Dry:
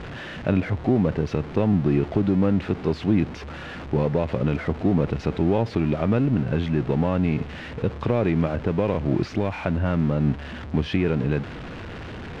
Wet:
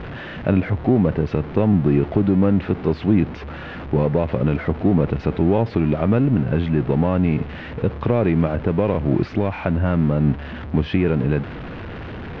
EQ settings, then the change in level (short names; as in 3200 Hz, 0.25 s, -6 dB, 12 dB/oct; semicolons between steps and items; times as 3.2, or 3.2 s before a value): air absorption 200 m; +4.0 dB